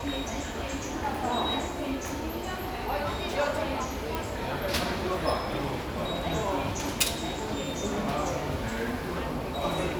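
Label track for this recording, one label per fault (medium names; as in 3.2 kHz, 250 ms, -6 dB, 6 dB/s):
4.150000	4.150000	pop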